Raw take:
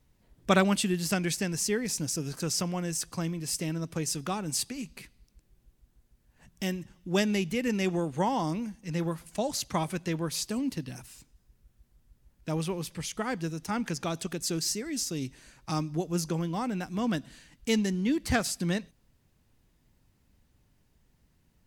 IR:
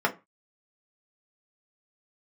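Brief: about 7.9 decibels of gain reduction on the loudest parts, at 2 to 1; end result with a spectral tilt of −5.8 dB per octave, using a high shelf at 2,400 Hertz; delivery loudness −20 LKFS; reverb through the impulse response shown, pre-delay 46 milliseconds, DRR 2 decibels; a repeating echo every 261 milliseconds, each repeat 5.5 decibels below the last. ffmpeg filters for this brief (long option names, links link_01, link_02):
-filter_complex "[0:a]highshelf=frequency=2400:gain=-9,acompressor=threshold=-33dB:ratio=2,aecho=1:1:261|522|783|1044|1305|1566|1827:0.531|0.281|0.149|0.079|0.0419|0.0222|0.0118,asplit=2[link_01][link_02];[1:a]atrim=start_sample=2205,adelay=46[link_03];[link_02][link_03]afir=irnorm=-1:irlink=0,volume=-15dB[link_04];[link_01][link_04]amix=inputs=2:normalize=0,volume=12.5dB"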